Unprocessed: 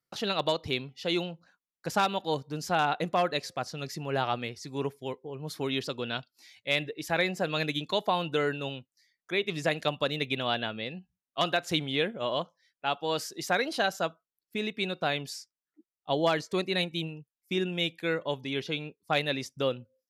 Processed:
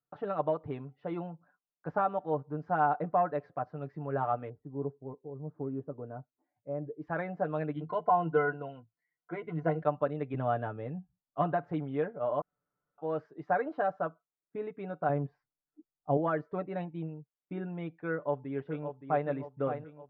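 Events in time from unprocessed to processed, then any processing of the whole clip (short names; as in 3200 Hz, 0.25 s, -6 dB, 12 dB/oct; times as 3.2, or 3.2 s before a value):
4.49–7.02 Bessel low-pass 500 Hz
7.73–9.82 ripple EQ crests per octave 1.9, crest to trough 14 dB
10.34–11.7 low shelf 200 Hz +11.5 dB
12.41–12.98 room tone
15.09–16.17 tilt -3 dB/oct
18.13–19.26 echo throw 0.57 s, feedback 50%, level -8.5 dB
whole clip: Chebyshev low-pass 1400 Hz, order 3; bell 690 Hz +5 dB 0.99 oct; comb 6.8 ms, depth 63%; gain -5.5 dB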